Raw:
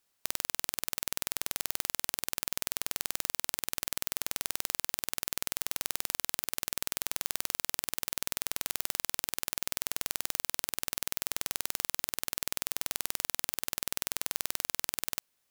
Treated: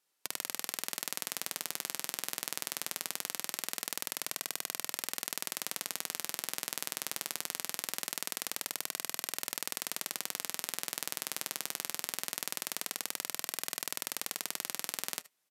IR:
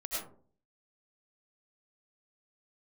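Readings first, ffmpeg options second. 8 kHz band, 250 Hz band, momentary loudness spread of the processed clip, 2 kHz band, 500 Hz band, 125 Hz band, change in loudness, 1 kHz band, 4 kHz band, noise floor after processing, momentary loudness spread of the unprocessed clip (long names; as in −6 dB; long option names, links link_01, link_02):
−1.5 dB, −2.0 dB, 1 LU, −1.5 dB, −1.5 dB, −8.0 dB, −3.5 dB, −1.5 dB, −1.5 dB, −56 dBFS, 1 LU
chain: -filter_complex "[0:a]flanger=delay=2.2:depth=4.8:regen=-65:speed=0.22:shape=sinusoidal,highpass=frequency=160:width=0.5412,highpass=frequency=160:width=1.3066,aresample=32000,aresample=44100,asplit=2[link_01][link_02];[1:a]atrim=start_sample=2205,atrim=end_sample=3528[link_03];[link_02][link_03]afir=irnorm=-1:irlink=0,volume=-4dB[link_04];[link_01][link_04]amix=inputs=2:normalize=0"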